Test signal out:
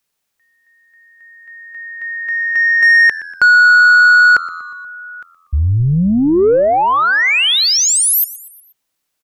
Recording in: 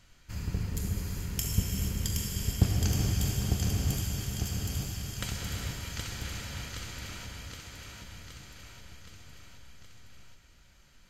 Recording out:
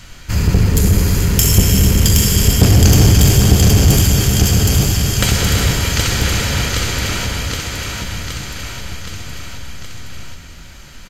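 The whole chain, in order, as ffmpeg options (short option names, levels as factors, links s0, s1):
-filter_complex "[0:a]apsyclip=7.94,adynamicequalizer=threshold=0.0126:dfrequency=440:dqfactor=2.1:tfrequency=440:tqfactor=2.1:attack=5:release=100:ratio=0.375:range=2:mode=boostabove:tftype=bell,acontrast=67,asplit=2[s0][s1];[s1]asplit=4[s2][s3][s4][s5];[s2]adelay=120,afreqshift=-85,volume=0.126[s6];[s3]adelay=240,afreqshift=-170,volume=0.0653[s7];[s4]adelay=360,afreqshift=-255,volume=0.0339[s8];[s5]adelay=480,afreqshift=-340,volume=0.0178[s9];[s6][s7][s8][s9]amix=inputs=4:normalize=0[s10];[s0][s10]amix=inputs=2:normalize=0,volume=0.75"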